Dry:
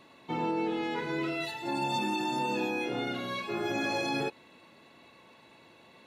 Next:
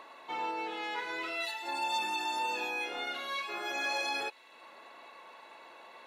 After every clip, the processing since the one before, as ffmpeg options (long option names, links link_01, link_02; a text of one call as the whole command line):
ffmpeg -i in.wav -filter_complex "[0:a]highpass=770,acrossover=split=1600[link_01][link_02];[link_01]acompressor=mode=upward:threshold=-44dB:ratio=2.5[link_03];[link_03][link_02]amix=inputs=2:normalize=0,volume=1dB" out.wav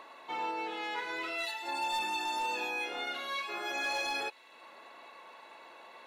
ffmpeg -i in.wav -af "volume=28dB,asoftclip=hard,volume=-28dB" out.wav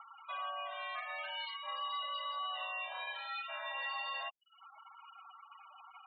ffmpeg -i in.wav -af "highpass=frequency=270:width_type=q:width=0.5412,highpass=frequency=270:width_type=q:width=1.307,lowpass=frequency=3600:width_type=q:width=0.5176,lowpass=frequency=3600:width_type=q:width=0.7071,lowpass=frequency=3600:width_type=q:width=1.932,afreqshift=250,acompressor=threshold=-46dB:ratio=1.5,afftfilt=real='re*gte(hypot(re,im),0.00708)':imag='im*gte(hypot(re,im),0.00708)':win_size=1024:overlap=0.75" out.wav